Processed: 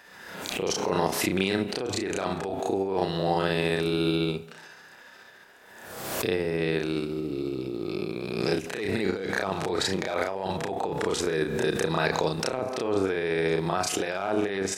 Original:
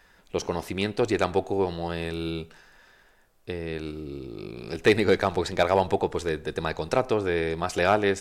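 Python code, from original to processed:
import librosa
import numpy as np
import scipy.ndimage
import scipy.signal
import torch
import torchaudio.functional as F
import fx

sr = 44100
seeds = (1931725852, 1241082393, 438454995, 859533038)

y = scipy.signal.sosfilt(scipy.signal.butter(2, 150.0, 'highpass', fs=sr, output='sos'), x)
y = fx.over_compress(y, sr, threshold_db=-29.0, ratio=-1.0)
y = fx.stretch_grains(y, sr, factor=1.8, grain_ms=141.0)
y = fx.pre_swell(y, sr, db_per_s=43.0)
y = F.gain(torch.from_numpy(y), 3.0).numpy()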